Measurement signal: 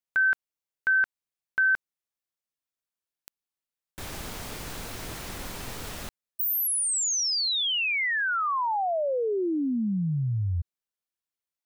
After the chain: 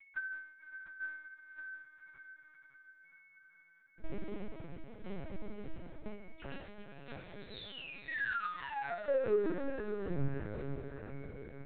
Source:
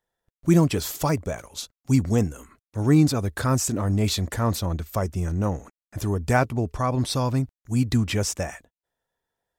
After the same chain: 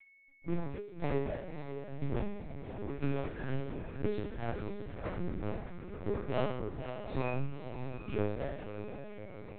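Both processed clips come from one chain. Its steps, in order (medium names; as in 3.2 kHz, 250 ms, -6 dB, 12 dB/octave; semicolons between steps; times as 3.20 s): median filter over 41 samples; whistle 2.2 kHz -52 dBFS; in parallel at -1.5 dB: compression 20:1, threshold -33 dBFS; on the sum: chord resonator C#3 major, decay 0.73 s; dynamic bell 180 Hz, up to -5 dB, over -54 dBFS, Q 1; saturation -36 dBFS; tremolo saw down 0.99 Hz, depth 85%; on a send: echo that smears into a reverb 553 ms, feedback 61%, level -8 dB; on the sum: LPC vocoder at 8 kHz pitch kept; trim +15.5 dB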